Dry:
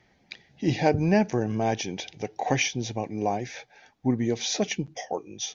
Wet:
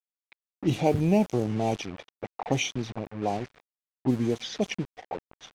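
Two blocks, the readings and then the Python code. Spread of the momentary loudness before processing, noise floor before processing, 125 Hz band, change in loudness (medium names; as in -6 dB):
12 LU, -64 dBFS, -0.5 dB, -1.0 dB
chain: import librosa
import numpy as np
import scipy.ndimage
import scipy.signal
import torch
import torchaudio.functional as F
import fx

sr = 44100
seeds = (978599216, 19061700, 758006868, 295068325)

y = fx.env_flanger(x, sr, rest_ms=10.0, full_db=-23.0)
y = np.where(np.abs(y) >= 10.0 ** (-35.5 / 20.0), y, 0.0)
y = fx.env_lowpass(y, sr, base_hz=1400.0, full_db=-19.5)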